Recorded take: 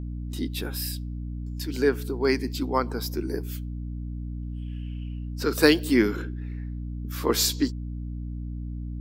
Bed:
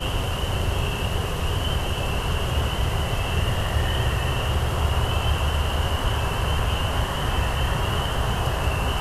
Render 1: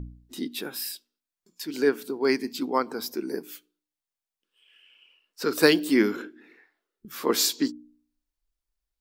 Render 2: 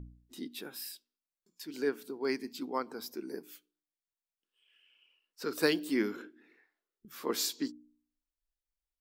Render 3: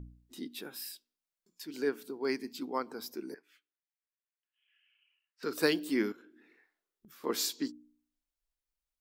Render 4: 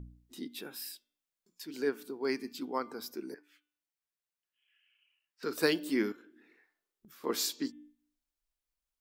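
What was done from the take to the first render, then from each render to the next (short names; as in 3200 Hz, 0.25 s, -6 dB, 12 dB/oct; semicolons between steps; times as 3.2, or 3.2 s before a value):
de-hum 60 Hz, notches 5
gain -9.5 dB
3.34–5.43 band-pass 1900 Hz, Q 2; 6.12–7.24 compressor 10:1, threshold -53 dBFS
de-hum 296 Hz, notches 12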